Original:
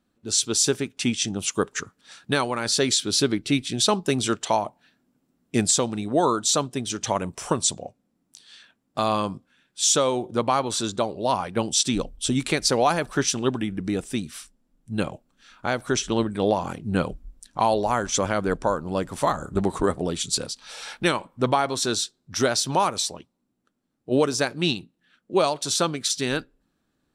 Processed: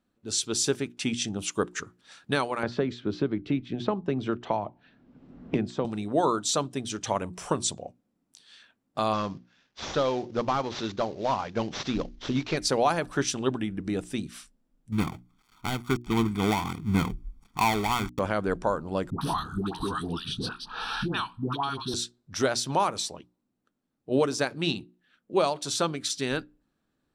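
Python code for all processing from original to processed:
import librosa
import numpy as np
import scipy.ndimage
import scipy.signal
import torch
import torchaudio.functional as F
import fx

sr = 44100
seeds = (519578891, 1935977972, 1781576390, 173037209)

y = fx.chain(x, sr, fx.spacing_loss(db_at_10k=41),
    fx.band_squash(depth_pct=100), at=(2.63, 5.85))
y = fx.chain(y, sr, fx.cvsd(bps=32000),
    fx.high_shelf(hz=4500.0, db=5.0), at=(9.13, 12.57))
y = fx.chain(y, sr, fx.dead_time(dead_ms=0.25),
    fx.comb(ms=0.9, depth=0.92), at=(14.92, 18.19))
y = fx.chain(y, sr, fx.fixed_phaser(hz=2100.0, stages=6),
    fx.dispersion(late='highs', ms=113.0, hz=770.0),
    fx.band_squash(depth_pct=100), at=(19.1, 21.94))
y = fx.high_shelf(y, sr, hz=4700.0, db=-5.0)
y = fx.hum_notches(y, sr, base_hz=60, count=6)
y = y * 10.0 ** (-3.0 / 20.0)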